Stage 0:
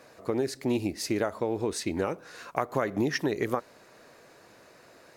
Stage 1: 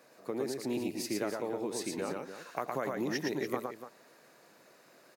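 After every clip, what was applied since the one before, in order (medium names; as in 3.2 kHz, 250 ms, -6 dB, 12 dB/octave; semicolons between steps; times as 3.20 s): high-pass 140 Hz 24 dB/octave; treble shelf 12 kHz +10.5 dB; loudspeakers at several distances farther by 39 m -3 dB, 100 m -11 dB; trim -7.5 dB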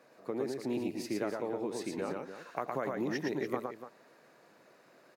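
treble shelf 4.3 kHz -10 dB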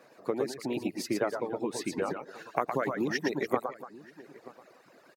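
reverb removal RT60 0.96 s; harmonic-percussive split percussive +8 dB; echo from a far wall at 160 m, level -19 dB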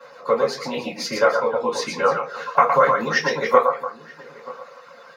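high-pass 460 Hz 12 dB/octave; reverberation RT60 0.25 s, pre-delay 3 ms, DRR -6 dB; trim -1 dB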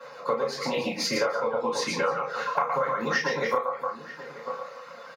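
compression 16:1, threshold -23 dBFS, peak gain reduction 16 dB; doubling 35 ms -6 dB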